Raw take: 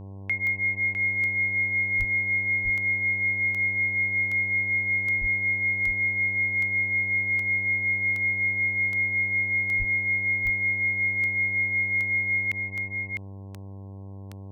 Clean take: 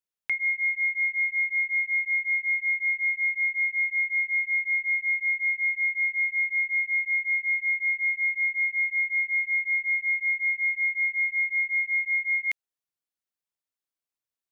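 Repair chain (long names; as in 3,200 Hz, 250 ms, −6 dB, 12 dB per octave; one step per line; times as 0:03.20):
click removal
hum removal 97.7 Hz, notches 11
high-pass at the plosives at 0:01.98/0:05.20/0:09.78
echo removal 654 ms −5.5 dB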